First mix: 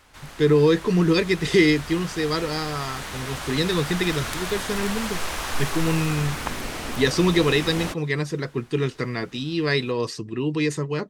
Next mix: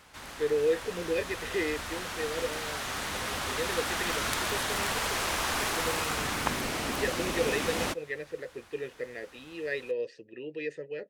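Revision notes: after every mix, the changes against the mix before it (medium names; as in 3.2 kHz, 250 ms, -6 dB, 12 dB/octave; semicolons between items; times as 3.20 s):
speech: add vowel filter e; background: add high-pass 83 Hz 6 dB/octave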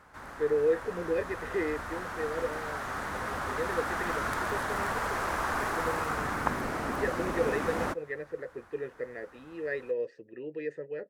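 master: add resonant high shelf 2.1 kHz -10.5 dB, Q 1.5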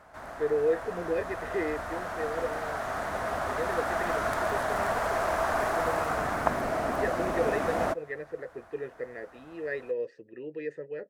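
background: add peaking EQ 660 Hz +13.5 dB 0.33 oct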